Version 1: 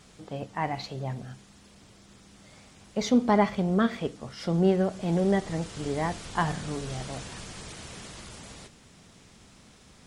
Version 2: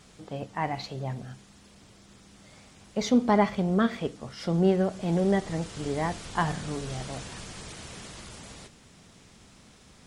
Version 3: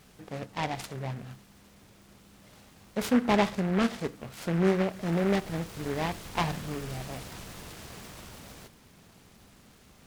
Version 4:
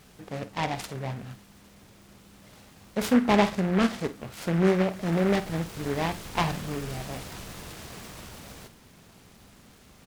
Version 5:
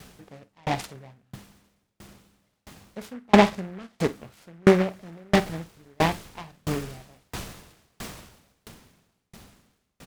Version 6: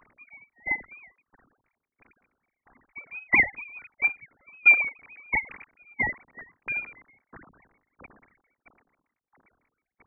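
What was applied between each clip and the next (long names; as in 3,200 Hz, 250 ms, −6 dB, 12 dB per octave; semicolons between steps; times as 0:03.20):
no processing that can be heard
short delay modulated by noise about 1,300 Hz, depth 0.1 ms; level −2 dB
double-tracking delay 49 ms −14 dB; level +2.5 dB
tremolo with a ramp in dB decaying 1.5 Hz, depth 39 dB; level +9 dB
three sine waves on the formant tracks; voice inversion scrambler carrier 2,800 Hz; graphic EQ with 15 bands 250 Hz +5 dB, 630 Hz −4 dB, 1,600 Hz −6 dB; level −1 dB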